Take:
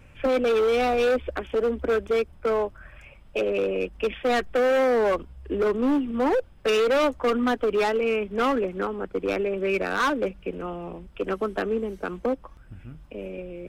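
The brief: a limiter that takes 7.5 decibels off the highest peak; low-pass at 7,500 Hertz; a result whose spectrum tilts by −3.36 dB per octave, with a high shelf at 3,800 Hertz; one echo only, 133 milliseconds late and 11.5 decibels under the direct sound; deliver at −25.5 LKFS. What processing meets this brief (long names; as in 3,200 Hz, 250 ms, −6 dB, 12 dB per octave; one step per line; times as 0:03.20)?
low-pass filter 7,500 Hz
high-shelf EQ 3,800 Hz +7.5 dB
brickwall limiter −21.5 dBFS
single-tap delay 133 ms −11.5 dB
level +3 dB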